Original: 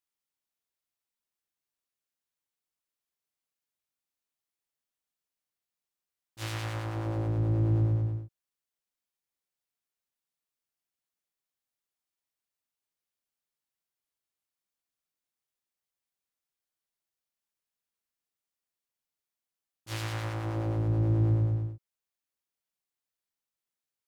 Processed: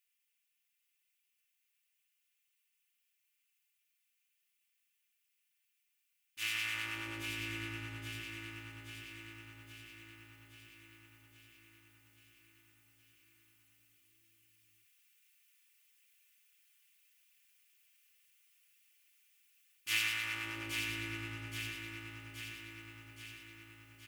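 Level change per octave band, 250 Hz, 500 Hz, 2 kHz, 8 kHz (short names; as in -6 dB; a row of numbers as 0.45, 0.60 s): -12.5 dB, -16.0 dB, +8.5 dB, n/a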